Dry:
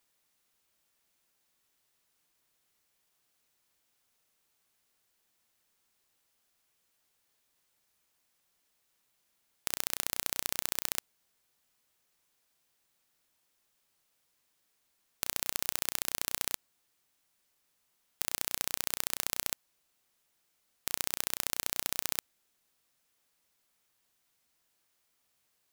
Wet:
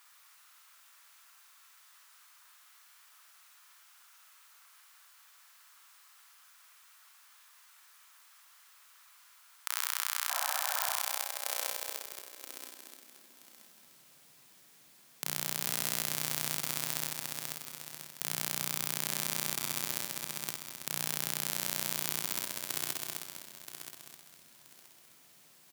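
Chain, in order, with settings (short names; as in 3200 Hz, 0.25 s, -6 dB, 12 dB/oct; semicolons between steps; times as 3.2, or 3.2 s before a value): regenerating reverse delay 0.488 s, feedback 47%, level -14 dB; high-pass sweep 1200 Hz -> 150 Hz, 10.29–14; in parallel at -1 dB: negative-ratio compressor -43 dBFS; on the sum: spectral repair 10.33–10.92, 530–1800 Hz after; limiter -10 dBFS, peak gain reduction 9.5 dB; tapped delay 52/221/735 ms -5/-12.5/-19 dB; on a send at -14.5 dB: reverb RT60 1.7 s, pre-delay 3 ms; on the sum: gain +4.5 dB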